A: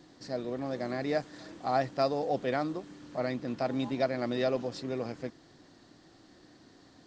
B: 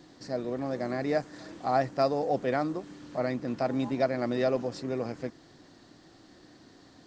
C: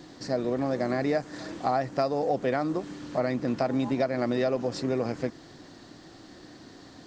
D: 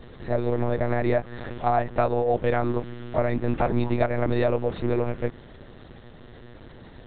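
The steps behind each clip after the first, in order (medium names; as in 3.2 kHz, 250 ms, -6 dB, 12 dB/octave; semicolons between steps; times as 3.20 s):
dynamic bell 3.5 kHz, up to -6 dB, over -56 dBFS, Q 1.5; trim +2.5 dB
compression, threshold -29 dBFS, peak gain reduction 9 dB; trim +6.5 dB
monotone LPC vocoder at 8 kHz 120 Hz; trim +4 dB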